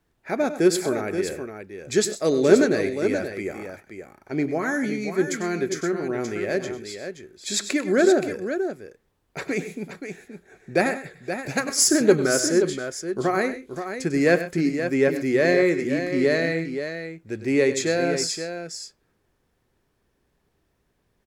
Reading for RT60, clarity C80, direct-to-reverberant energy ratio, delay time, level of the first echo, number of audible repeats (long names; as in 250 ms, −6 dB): no reverb audible, no reverb audible, no reverb audible, 98 ms, −12.5 dB, 3